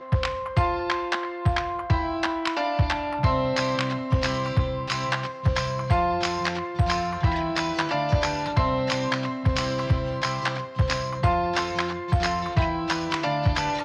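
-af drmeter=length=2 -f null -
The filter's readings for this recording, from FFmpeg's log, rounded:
Channel 1: DR: 11.1
Overall DR: 11.1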